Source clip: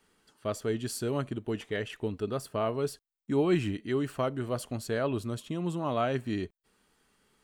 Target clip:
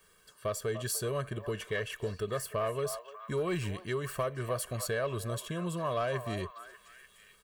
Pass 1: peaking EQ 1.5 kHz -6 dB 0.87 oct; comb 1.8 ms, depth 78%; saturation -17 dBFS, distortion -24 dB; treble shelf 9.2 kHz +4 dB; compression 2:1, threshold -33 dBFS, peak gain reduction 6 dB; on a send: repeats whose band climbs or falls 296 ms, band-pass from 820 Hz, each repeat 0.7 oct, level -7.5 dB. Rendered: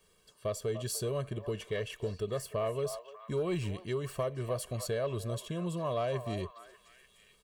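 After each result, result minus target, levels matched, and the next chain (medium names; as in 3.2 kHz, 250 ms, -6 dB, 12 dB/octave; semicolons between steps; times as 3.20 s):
2 kHz band -6.0 dB; 8 kHz band -2.5 dB
peaking EQ 1.5 kHz +4.5 dB 0.87 oct; comb 1.8 ms, depth 78%; saturation -17 dBFS, distortion -21 dB; treble shelf 9.2 kHz +4 dB; compression 2:1, threshold -33 dBFS, peak gain reduction 6 dB; on a send: repeats whose band climbs or falls 296 ms, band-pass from 820 Hz, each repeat 0.7 oct, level -7.5 dB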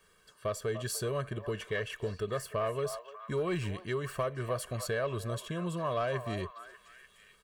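8 kHz band -3.0 dB
peaking EQ 1.5 kHz +4.5 dB 0.87 oct; comb 1.8 ms, depth 78%; saturation -17 dBFS, distortion -21 dB; treble shelf 9.2 kHz +13.5 dB; compression 2:1, threshold -33 dBFS, peak gain reduction 6 dB; on a send: repeats whose band climbs or falls 296 ms, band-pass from 820 Hz, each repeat 0.7 oct, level -7.5 dB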